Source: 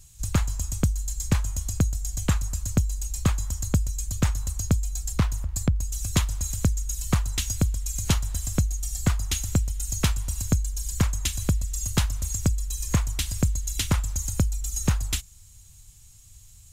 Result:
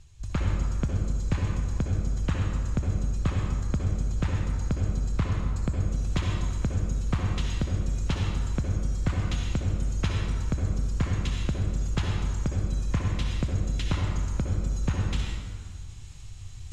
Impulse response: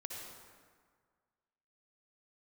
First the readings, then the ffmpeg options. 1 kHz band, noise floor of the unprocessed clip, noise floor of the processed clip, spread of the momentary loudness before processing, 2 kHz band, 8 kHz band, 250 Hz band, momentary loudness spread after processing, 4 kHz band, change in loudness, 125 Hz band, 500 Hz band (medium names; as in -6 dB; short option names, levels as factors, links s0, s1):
-1.0 dB, -50 dBFS, -39 dBFS, 3 LU, -2.0 dB, -15.5 dB, -2.0 dB, 2 LU, -6.0 dB, -2.0 dB, -1.0 dB, -0.5 dB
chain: -filter_complex "[0:a]lowpass=3500,areverse,acompressor=mode=upward:threshold=0.0501:ratio=2.5,areverse[s0];[1:a]atrim=start_sample=2205[s1];[s0][s1]afir=irnorm=-1:irlink=0"